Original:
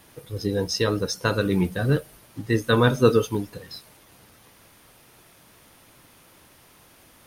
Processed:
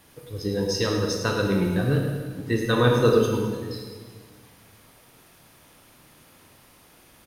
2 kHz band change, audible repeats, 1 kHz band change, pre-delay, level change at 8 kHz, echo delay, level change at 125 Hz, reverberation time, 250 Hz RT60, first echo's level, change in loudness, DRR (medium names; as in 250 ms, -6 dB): -1.0 dB, 1, -0.5 dB, 23 ms, -0.5 dB, 105 ms, 0.0 dB, 1.5 s, 1.9 s, -9.5 dB, -0.5 dB, 1.0 dB